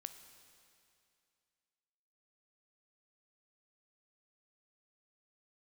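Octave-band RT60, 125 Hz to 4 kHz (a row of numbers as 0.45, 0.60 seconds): 2.5, 2.5, 2.5, 2.5, 2.5, 2.4 seconds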